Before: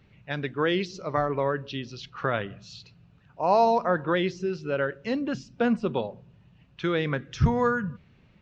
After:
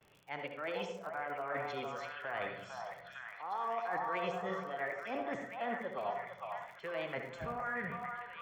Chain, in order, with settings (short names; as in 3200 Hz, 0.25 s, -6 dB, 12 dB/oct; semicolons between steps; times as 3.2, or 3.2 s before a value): gate with hold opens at -55 dBFS; three-band isolator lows -16 dB, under 380 Hz, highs -18 dB, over 2100 Hz; reverse; compressor, threshold -40 dBFS, peak gain reduction 21 dB; reverse; Butterworth band-stop 3800 Hz, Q 6.2; formant shift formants +4 st; delay with a stepping band-pass 0.455 s, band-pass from 950 Hz, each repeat 0.7 oct, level -1 dB; on a send at -5 dB: reverb RT60 0.50 s, pre-delay 62 ms; on the sum: crackle 49/s -50 dBFS; gain +2 dB